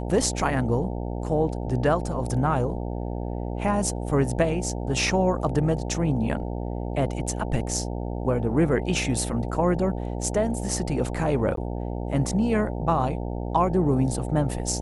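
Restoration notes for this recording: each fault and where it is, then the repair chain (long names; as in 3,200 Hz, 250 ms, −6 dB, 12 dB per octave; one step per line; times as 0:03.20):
mains buzz 60 Hz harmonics 15 −30 dBFS
0:11.56–0:11.57: drop-out 13 ms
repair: hum removal 60 Hz, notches 15
repair the gap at 0:11.56, 13 ms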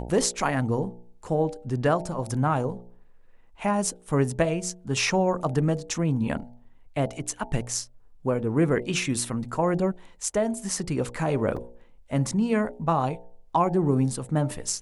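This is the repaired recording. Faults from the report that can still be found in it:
none of them is left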